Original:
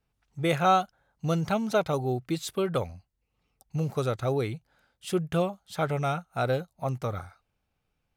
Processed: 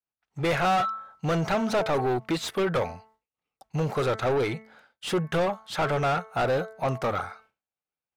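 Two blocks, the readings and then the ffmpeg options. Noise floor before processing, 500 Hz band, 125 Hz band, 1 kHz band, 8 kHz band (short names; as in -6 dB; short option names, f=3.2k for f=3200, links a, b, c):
-79 dBFS, +2.5 dB, -1.0 dB, +2.0 dB, +1.0 dB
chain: -filter_complex "[0:a]bandreject=f=219.9:t=h:w=4,bandreject=f=439.8:t=h:w=4,bandreject=f=659.7:t=h:w=4,bandreject=f=879.6:t=h:w=4,bandreject=f=1.0995k:t=h:w=4,bandreject=f=1.3194k:t=h:w=4,bandreject=f=1.5393k:t=h:w=4,bandreject=f=1.7592k:t=h:w=4,bandreject=f=1.9791k:t=h:w=4,bandreject=f=2.199k:t=h:w=4,agate=range=-33dB:threshold=-60dB:ratio=3:detection=peak,asplit=2[a][b];[b]highpass=f=720:p=1,volume=28dB,asoftclip=type=tanh:threshold=-10.5dB[c];[a][c]amix=inputs=2:normalize=0,lowpass=f=2.1k:p=1,volume=-6dB,volume=-5.5dB"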